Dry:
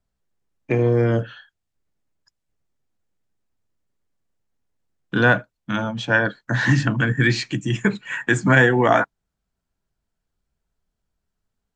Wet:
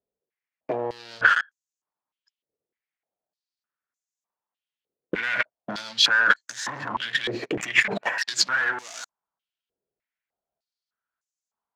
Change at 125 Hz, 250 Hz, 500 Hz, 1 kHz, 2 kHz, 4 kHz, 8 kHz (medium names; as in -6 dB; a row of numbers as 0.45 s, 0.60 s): -24.0 dB, -15.0 dB, -11.5 dB, -3.5 dB, -1.5 dB, +7.0 dB, +5.5 dB